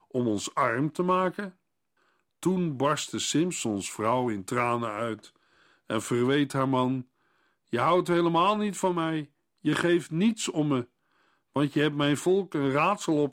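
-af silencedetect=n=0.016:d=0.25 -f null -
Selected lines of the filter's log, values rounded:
silence_start: 1.49
silence_end: 2.43 | silence_duration: 0.94
silence_start: 5.16
silence_end: 5.90 | silence_duration: 0.74
silence_start: 7.02
silence_end: 7.73 | silence_duration: 0.72
silence_start: 9.24
silence_end: 9.65 | silence_duration: 0.41
silence_start: 10.83
silence_end: 11.56 | silence_duration: 0.73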